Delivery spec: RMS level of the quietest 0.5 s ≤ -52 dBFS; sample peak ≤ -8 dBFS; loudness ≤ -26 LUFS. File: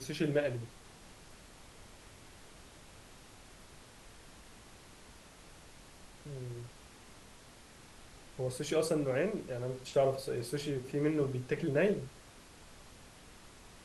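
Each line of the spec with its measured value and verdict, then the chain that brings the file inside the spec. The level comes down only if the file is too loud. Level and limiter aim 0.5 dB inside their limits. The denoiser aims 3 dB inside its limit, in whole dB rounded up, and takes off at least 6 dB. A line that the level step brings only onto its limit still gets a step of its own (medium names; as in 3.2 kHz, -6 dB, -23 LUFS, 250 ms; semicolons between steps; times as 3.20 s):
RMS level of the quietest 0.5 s -56 dBFS: pass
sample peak -18.0 dBFS: pass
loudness -34.5 LUFS: pass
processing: none needed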